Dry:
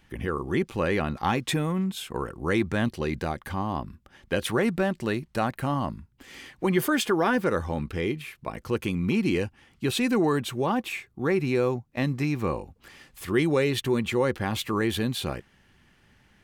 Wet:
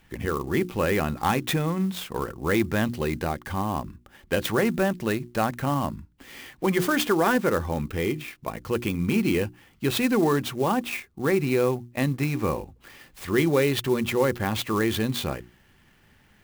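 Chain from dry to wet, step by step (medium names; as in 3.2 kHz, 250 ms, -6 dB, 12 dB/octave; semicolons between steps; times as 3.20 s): hum notches 60/120/180/240/300/360 Hz; sampling jitter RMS 0.025 ms; trim +2 dB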